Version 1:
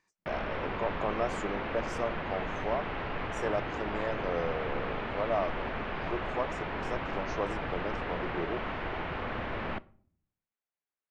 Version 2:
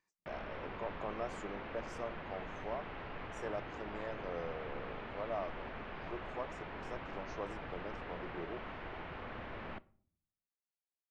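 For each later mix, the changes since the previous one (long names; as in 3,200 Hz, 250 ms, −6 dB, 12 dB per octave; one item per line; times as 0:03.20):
speech −9.0 dB
background −10.0 dB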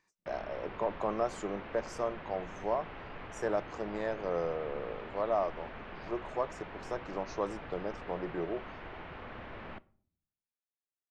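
speech +9.0 dB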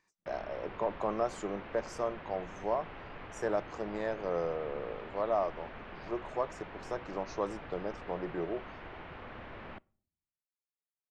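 background: send −8.0 dB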